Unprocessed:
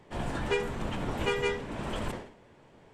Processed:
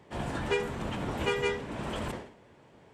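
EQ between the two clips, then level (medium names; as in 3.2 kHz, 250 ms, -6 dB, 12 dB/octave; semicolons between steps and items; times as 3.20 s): high-pass 47 Hz; 0.0 dB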